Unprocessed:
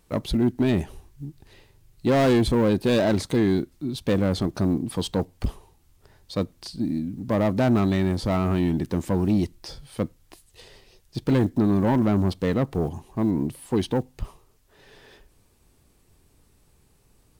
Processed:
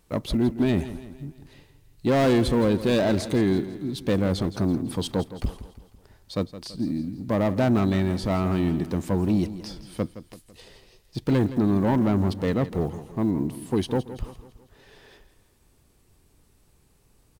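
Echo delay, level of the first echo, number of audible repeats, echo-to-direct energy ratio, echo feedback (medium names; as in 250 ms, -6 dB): 166 ms, -14.0 dB, 4, -13.0 dB, 49%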